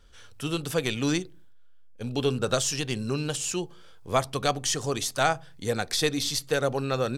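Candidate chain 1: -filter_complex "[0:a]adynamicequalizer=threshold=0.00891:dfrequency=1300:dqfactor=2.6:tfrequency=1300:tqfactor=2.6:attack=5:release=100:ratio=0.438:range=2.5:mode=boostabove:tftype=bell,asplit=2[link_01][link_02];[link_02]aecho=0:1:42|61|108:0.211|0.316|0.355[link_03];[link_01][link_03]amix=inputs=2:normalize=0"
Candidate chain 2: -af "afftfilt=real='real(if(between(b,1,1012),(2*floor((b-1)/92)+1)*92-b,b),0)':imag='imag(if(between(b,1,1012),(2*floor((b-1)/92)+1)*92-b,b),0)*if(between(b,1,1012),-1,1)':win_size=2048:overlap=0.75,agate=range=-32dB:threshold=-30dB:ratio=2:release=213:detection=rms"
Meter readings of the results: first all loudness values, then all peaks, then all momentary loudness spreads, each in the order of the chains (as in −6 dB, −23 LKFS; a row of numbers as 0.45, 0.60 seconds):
−26.0, −26.5 LKFS; −7.5, −8.5 dBFS; 8, 6 LU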